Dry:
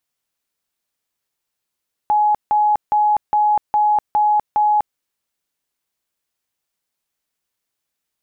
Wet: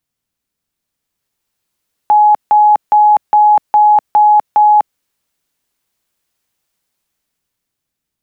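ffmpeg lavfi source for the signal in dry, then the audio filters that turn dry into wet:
-f lavfi -i "aevalsrc='0.251*sin(2*PI*841*mod(t,0.41))*lt(mod(t,0.41),208/841)':d=2.87:s=44100"
-filter_complex "[0:a]acrossover=split=290[s0][s1];[s0]aeval=exprs='0.0335*sin(PI/2*2.24*val(0)/0.0335)':c=same[s2];[s1]dynaudnorm=f=200:g=13:m=2.66[s3];[s2][s3]amix=inputs=2:normalize=0"

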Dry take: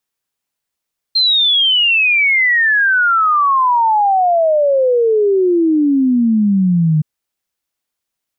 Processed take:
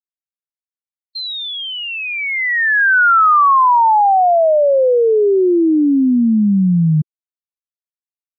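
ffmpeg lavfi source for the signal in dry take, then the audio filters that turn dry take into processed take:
-f lavfi -i "aevalsrc='0.335*clip(min(t,5.87-t)/0.01,0,1)*sin(2*PI*4200*5.87/log(150/4200)*(exp(log(150/4200)*t/5.87)-1))':d=5.87:s=44100"
-af "afftfilt=real='re*gte(hypot(re,im),0.0251)':imag='im*gte(hypot(re,im),0.0251)':win_size=1024:overlap=0.75,highshelf=f=2000:t=q:w=1.5:g=-10"

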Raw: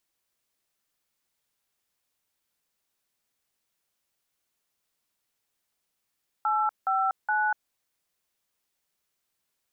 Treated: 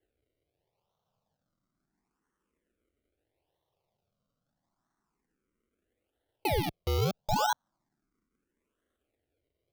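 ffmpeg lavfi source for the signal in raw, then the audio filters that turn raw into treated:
-f lavfi -i "aevalsrc='0.0562*clip(min(mod(t,0.418),0.242-mod(t,0.418))/0.002,0,1)*(eq(floor(t/0.418),0)*(sin(2*PI*852*mod(t,0.418))+sin(2*PI*1336*mod(t,0.418)))+eq(floor(t/0.418),1)*(sin(2*PI*770*mod(t,0.418))+sin(2*PI*1336*mod(t,0.418)))+eq(floor(t/0.418),2)*(sin(2*PI*852*mod(t,0.418))+sin(2*PI*1477*mod(t,0.418))))':d=1.254:s=44100"
-filter_complex "[0:a]acrusher=samples=35:mix=1:aa=0.000001:lfo=1:lforange=35:lforate=0.76,asplit=2[s0][s1];[s1]afreqshift=0.33[s2];[s0][s2]amix=inputs=2:normalize=1"

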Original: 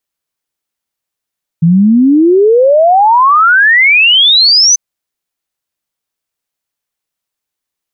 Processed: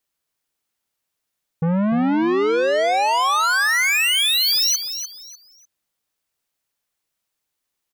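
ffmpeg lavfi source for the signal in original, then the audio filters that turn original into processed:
-f lavfi -i "aevalsrc='0.668*clip(min(t,3.14-t)/0.01,0,1)*sin(2*PI*160*3.14/log(6200/160)*(exp(log(6200/160)*t/3.14)-1))':d=3.14:s=44100"
-filter_complex "[0:a]asoftclip=type=tanh:threshold=0.126,asplit=2[s0][s1];[s1]aecho=0:1:298|596|894:0.335|0.0871|0.0226[s2];[s0][s2]amix=inputs=2:normalize=0"

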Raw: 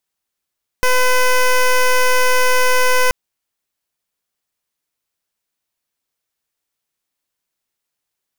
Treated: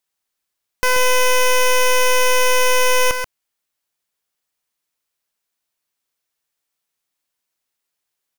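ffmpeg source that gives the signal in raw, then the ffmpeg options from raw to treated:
-f lavfi -i "aevalsrc='0.237*(2*lt(mod(505*t,1),0.13)-1)':d=2.28:s=44100"
-filter_complex "[0:a]lowshelf=f=400:g=-4.5,asplit=2[s0][s1];[s1]aecho=0:1:133:0.422[s2];[s0][s2]amix=inputs=2:normalize=0"

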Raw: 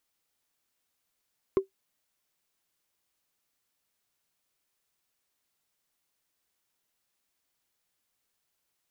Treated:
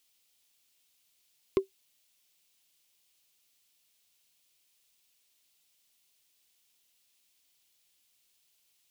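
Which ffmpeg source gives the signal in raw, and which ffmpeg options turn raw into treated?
-f lavfi -i "aevalsrc='0.178*pow(10,-3*t/0.12)*sin(2*PI*386*t)+0.0447*pow(10,-3*t/0.036)*sin(2*PI*1064.2*t)+0.0112*pow(10,-3*t/0.016)*sin(2*PI*2085.9*t)+0.00282*pow(10,-3*t/0.009)*sin(2*PI*3448.1*t)+0.000708*pow(10,-3*t/0.005)*sin(2*PI*5149.2*t)':d=0.45:s=44100"
-af "highshelf=f=2100:t=q:w=1.5:g=8.5"

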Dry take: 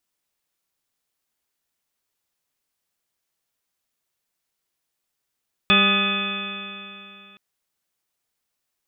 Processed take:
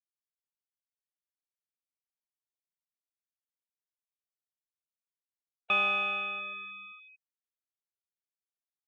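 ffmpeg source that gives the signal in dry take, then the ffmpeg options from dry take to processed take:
-f lavfi -i "aevalsrc='0.1*pow(10,-3*t/2.86)*sin(2*PI*197.3*t)+0.0447*pow(10,-3*t/2.86)*sin(2*PI*396.36*t)+0.0335*pow(10,-3*t/2.86)*sin(2*PI*598.93*t)+0.0251*pow(10,-3*t/2.86)*sin(2*PI*806.69*t)+0.0106*pow(10,-3*t/2.86)*sin(2*PI*1021.27*t)+0.1*pow(10,-3*t/2.86)*sin(2*PI*1244.19*t)+0.0266*pow(10,-3*t/2.86)*sin(2*PI*1476.88*t)+0.0501*pow(10,-3*t/2.86)*sin(2*PI*1720.66*t)+0.0178*pow(10,-3*t/2.86)*sin(2*PI*1976.72*t)+0.0178*pow(10,-3*t/2.86)*sin(2*PI*2246.15*t)+0.158*pow(10,-3*t/2.86)*sin(2*PI*2529.92*t)+0.0251*pow(10,-3*t/2.86)*sin(2*PI*2828.91*t)+0.0178*pow(10,-3*t/2.86)*sin(2*PI*3143.88*t)+0.133*pow(10,-3*t/2.86)*sin(2*PI*3475.52*t)':d=1.67:s=44100"
-filter_complex "[0:a]afftfilt=real='re*gte(hypot(re,im),0.0447)':imag='im*gte(hypot(re,im),0.0447)':win_size=1024:overlap=0.75,asplit=2[s0][s1];[s1]asoftclip=type=tanh:threshold=0.0944,volume=0.631[s2];[s0][s2]amix=inputs=2:normalize=0,asplit=3[s3][s4][s5];[s3]bandpass=f=730:t=q:w=8,volume=1[s6];[s4]bandpass=f=1090:t=q:w=8,volume=0.501[s7];[s5]bandpass=f=2440:t=q:w=8,volume=0.355[s8];[s6][s7][s8]amix=inputs=3:normalize=0"

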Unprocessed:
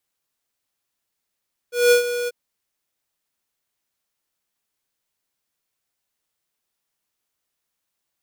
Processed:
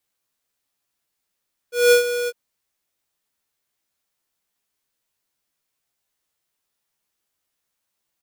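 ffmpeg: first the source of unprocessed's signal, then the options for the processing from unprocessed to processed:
-f lavfi -i "aevalsrc='0.237*(2*lt(mod(484*t,1),0.5)-1)':d=0.59:s=44100,afade=t=in:d=0.195,afade=t=out:st=0.195:d=0.11:silence=0.251,afade=t=out:st=0.56:d=0.03"
-filter_complex "[0:a]asplit=2[s0][s1];[s1]adelay=15,volume=0.562[s2];[s0][s2]amix=inputs=2:normalize=0"

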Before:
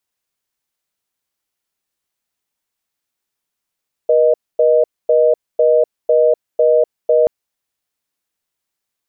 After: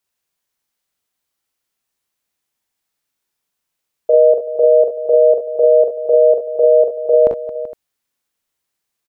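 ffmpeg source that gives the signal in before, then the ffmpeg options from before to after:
-f lavfi -i "aevalsrc='0.266*(sin(2*PI*480*t)+sin(2*PI*620*t))*clip(min(mod(t,0.5),0.25-mod(t,0.5))/0.005,0,1)':d=3.18:s=44100"
-af "aecho=1:1:42|59|68|222|383|462:0.668|0.335|0.282|0.2|0.168|0.112"

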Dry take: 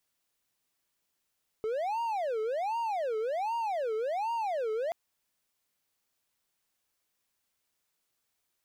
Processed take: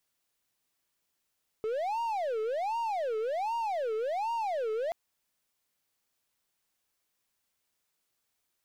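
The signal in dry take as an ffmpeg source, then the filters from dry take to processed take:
-f lavfi -i "aevalsrc='0.0447*(1-4*abs(mod((683.5*t-251.5/(2*PI*1.3)*sin(2*PI*1.3*t))+0.25,1)-0.5))':d=3.28:s=44100"
-af "aeval=exprs='0.0473*(cos(1*acos(clip(val(0)/0.0473,-1,1)))-cos(1*PI/2))+0.000944*(cos(8*acos(clip(val(0)/0.0473,-1,1)))-cos(8*PI/2))':c=same"

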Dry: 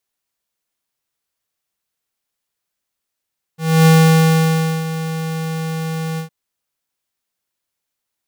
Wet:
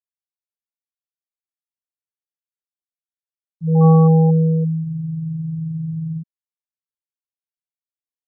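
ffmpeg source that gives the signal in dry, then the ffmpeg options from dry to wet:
-f lavfi -i "aevalsrc='0.376*(2*lt(mod(161*t,1),0.5)-1)':d=2.711:s=44100,afade=t=in:d=0.277,afade=t=out:st=0.277:d=0.98:silence=0.2,afade=t=out:st=2.6:d=0.111"
-filter_complex "[0:a]afftfilt=real='re*gte(hypot(re,im),0.562)':imag='im*gte(hypot(re,im),0.562)':win_size=1024:overlap=0.75,acrossover=split=290|950[s0][s1][s2];[s2]aexciter=amount=13.2:drive=3.1:freq=3700[s3];[s0][s1][s3]amix=inputs=3:normalize=0"

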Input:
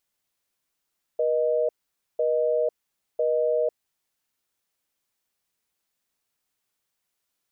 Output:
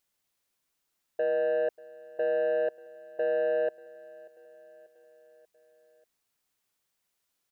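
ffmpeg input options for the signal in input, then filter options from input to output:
-f lavfi -i "aevalsrc='0.0708*(sin(2*PI*480*t)+sin(2*PI*620*t))*clip(min(mod(t,1),0.5-mod(t,1))/0.005,0,1)':d=2.84:s=44100"
-af "asoftclip=type=tanh:threshold=0.075,aecho=1:1:588|1176|1764|2352:0.0841|0.048|0.0273|0.0156"

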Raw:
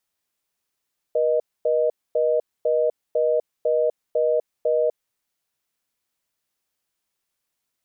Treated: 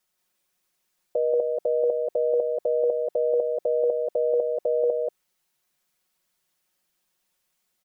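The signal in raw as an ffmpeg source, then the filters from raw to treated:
-f lavfi -i "aevalsrc='0.1*(sin(2*PI*480*t)+sin(2*PI*620*t))*clip(min(mod(t,0.5),0.25-mod(t,0.5))/0.005,0,1)':d=3.93:s=44100"
-filter_complex "[0:a]aecho=1:1:5.5:0.97,asplit=2[s0][s1];[s1]aecho=0:1:183:0.708[s2];[s0][s2]amix=inputs=2:normalize=0"

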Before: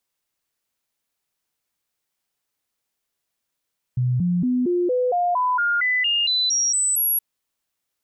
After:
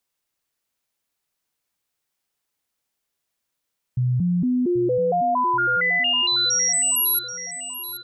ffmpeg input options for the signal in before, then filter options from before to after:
-f lavfi -i "aevalsrc='0.133*clip(min(mod(t,0.23),0.23-mod(t,0.23))/0.005,0,1)*sin(2*PI*125*pow(2,floor(t/0.23)/2)*mod(t,0.23))':d=3.22:s=44100"
-af "aecho=1:1:782|1564|2346|3128|3910:0.237|0.111|0.0524|0.0246|0.0116"

